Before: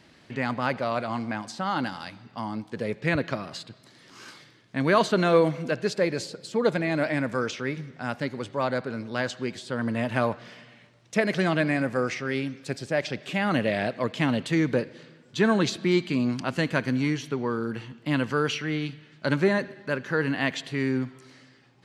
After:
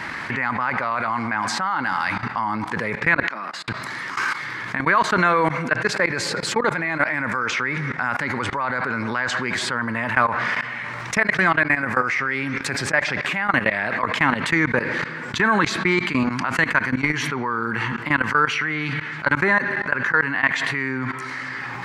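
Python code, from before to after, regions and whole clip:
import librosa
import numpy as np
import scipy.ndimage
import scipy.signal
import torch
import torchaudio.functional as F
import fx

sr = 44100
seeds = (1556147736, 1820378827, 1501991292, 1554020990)

y = fx.chain(x, sr, fx.highpass(hz=200.0, slope=24),
    fx.gate_flip(shuts_db=-33.0, range_db=-29), at=(3.23, 3.68))
y = fx.level_steps(y, sr, step_db=24)
y = fx.band_shelf(y, sr, hz=1400.0, db=14.0, octaves=1.7)
y = fx.env_flatten(y, sr, amount_pct=70)
y = F.gain(torch.from_numpy(y), -3.0).numpy()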